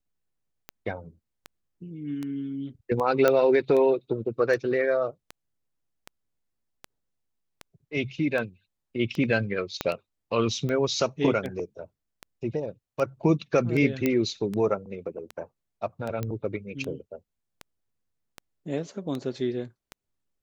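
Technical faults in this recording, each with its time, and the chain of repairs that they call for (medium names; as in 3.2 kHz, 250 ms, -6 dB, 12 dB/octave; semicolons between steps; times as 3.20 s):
tick 78 rpm -20 dBFS
3.28 s: pop -8 dBFS
9.81 s: pop -11 dBFS
14.06 s: pop -11 dBFS
16.23 s: pop -17 dBFS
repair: de-click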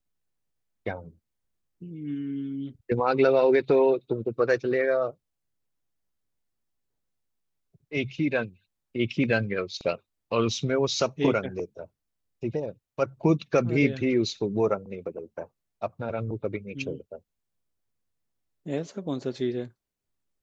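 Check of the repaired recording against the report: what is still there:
9.81 s: pop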